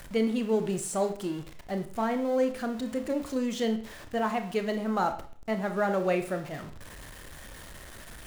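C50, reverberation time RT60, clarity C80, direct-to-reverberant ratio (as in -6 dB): 11.0 dB, 0.45 s, 15.0 dB, 6.5 dB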